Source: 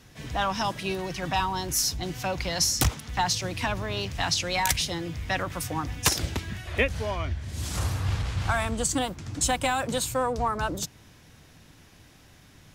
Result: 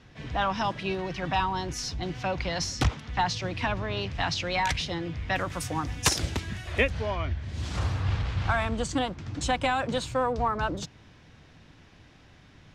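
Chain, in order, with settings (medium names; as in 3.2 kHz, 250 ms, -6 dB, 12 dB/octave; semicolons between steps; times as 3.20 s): low-pass 3.7 kHz 12 dB/octave, from 5.36 s 9.7 kHz, from 6.90 s 4.1 kHz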